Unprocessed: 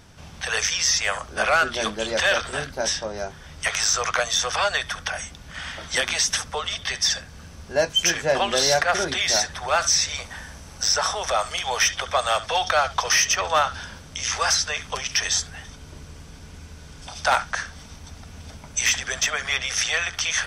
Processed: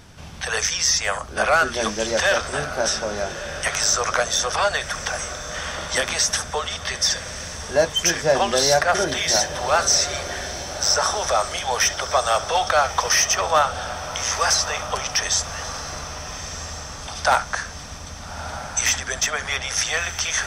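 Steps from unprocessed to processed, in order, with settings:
dynamic equaliser 2,800 Hz, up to −6 dB, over −36 dBFS, Q 0.93
on a send: feedback delay with all-pass diffusion 1,268 ms, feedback 53%, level −11.5 dB
on the sum: level +3.5 dB

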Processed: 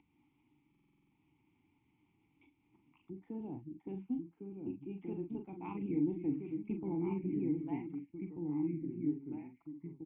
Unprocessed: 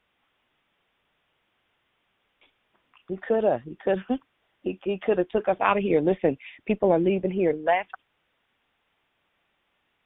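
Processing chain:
double-tracking delay 41 ms −7 dB
delay with pitch and tempo change per echo 701 ms, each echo −2 semitones, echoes 3, each echo −6 dB
drawn EQ curve 140 Hz 0 dB, 220 Hz −13 dB, 660 Hz −27 dB
upward compression, threshold −53 dBFS
formant filter u
buffer that repeats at 0:00.70, samples 2,048, times 8
level +13.5 dB

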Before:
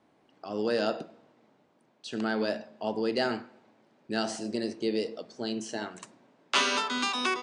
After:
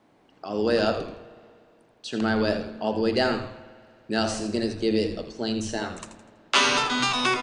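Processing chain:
echo with shifted repeats 82 ms, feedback 40%, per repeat −120 Hz, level −10 dB
spring reverb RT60 2.2 s, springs 59 ms, chirp 80 ms, DRR 17 dB
level +5 dB

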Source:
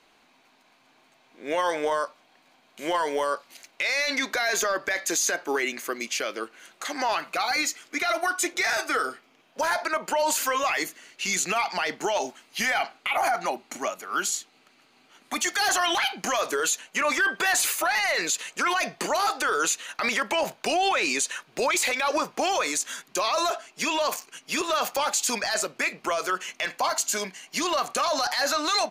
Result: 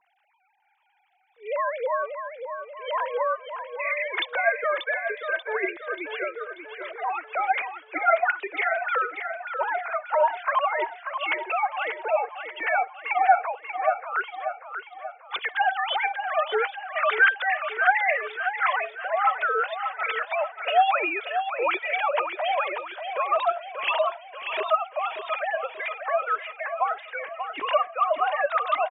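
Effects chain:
three sine waves on the formant tracks
on a send: repeating echo 586 ms, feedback 48%, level −8 dB

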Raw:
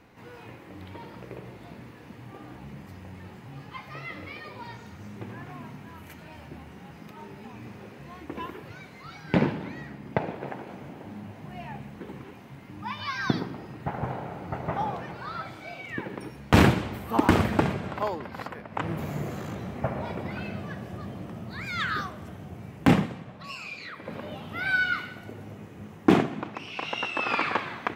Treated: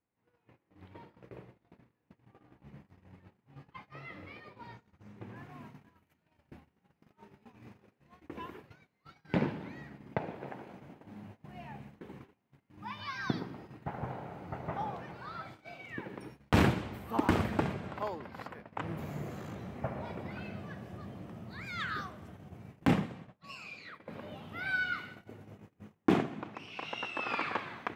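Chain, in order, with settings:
noise gate −41 dBFS, range −25 dB
high-shelf EQ 4,200 Hz −9 dB, from 0:05.36 −2 dB
level −7.5 dB

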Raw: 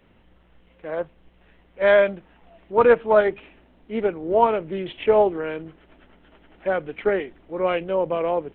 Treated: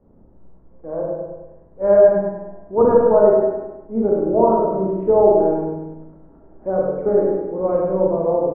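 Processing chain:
low-pass filter 1,100 Hz 24 dB per octave
tilt shelving filter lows +6 dB, about 790 Hz
repeating echo 101 ms, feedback 49%, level −6 dB
four-comb reverb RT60 0.93 s, combs from 28 ms, DRR −2.5 dB
level −2.5 dB

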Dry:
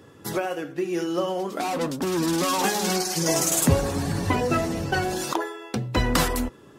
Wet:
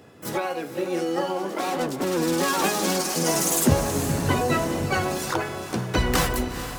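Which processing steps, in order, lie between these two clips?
feedback delay with all-pass diffusion 454 ms, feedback 48%, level −10 dB
pitch-shifted copies added +7 semitones −4 dB
level −1.5 dB

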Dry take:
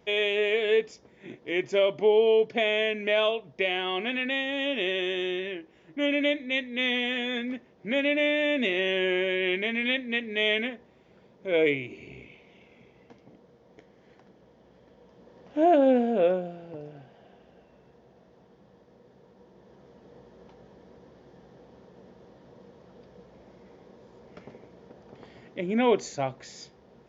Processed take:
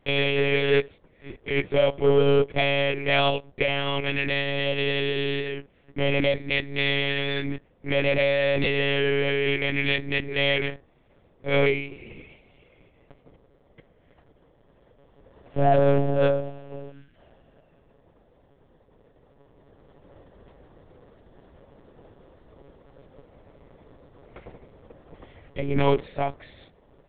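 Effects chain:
leveller curve on the samples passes 1
gain on a spectral selection 0:16.92–0:17.16, 360–1,300 Hz −15 dB
one-pitch LPC vocoder at 8 kHz 140 Hz

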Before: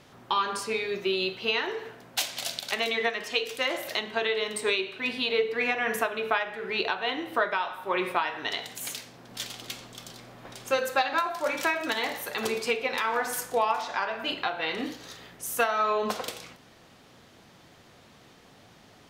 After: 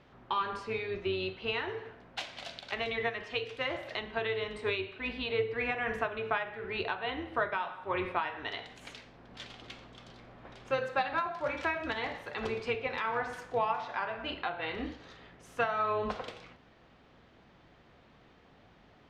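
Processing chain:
sub-octave generator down 2 octaves, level −6 dB
low-pass filter 2,900 Hz 12 dB per octave
level −5 dB

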